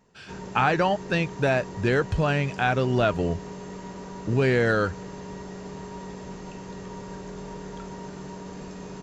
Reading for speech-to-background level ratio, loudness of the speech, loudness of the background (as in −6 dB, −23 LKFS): 14.5 dB, −24.5 LKFS, −39.0 LKFS